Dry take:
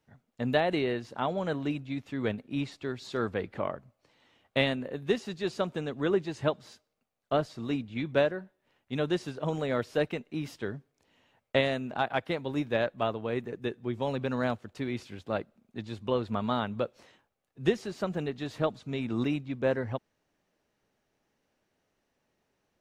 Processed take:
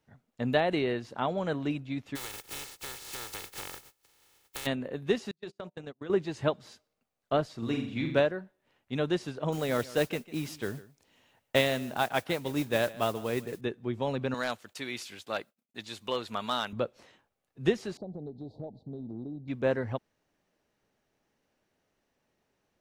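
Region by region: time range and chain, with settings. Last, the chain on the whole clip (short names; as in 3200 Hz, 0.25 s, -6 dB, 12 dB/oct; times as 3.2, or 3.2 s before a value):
2.15–4.65 spectral contrast lowered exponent 0.16 + comb 2.3 ms, depth 49% + compressor 16:1, threshold -35 dBFS
5.31–6.1 de-hum 65.76 Hz, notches 15 + gate -34 dBFS, range -39 dB + compressor 12:1, threshold -36 dBFS
7.58–8.2 high shelf 7400 Hz +6 dB + flutter echo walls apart 7.5 m, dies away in 0.57 s
9.52–13.61 high shelf 4600 Hz +8.5 dB + modulation noise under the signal 18 dB + echo 0.149 s -19 dB
14.34–16.73 expander -55 dBFS + tilt +4 dB/oct + hard clip -21 dBFS
17.97–19.48 Chebyshev band-stop 820–4100 Hz, order 4 + air absorption 450 m + compressor 4:1, threshold -37 dBFS
whole clip: dry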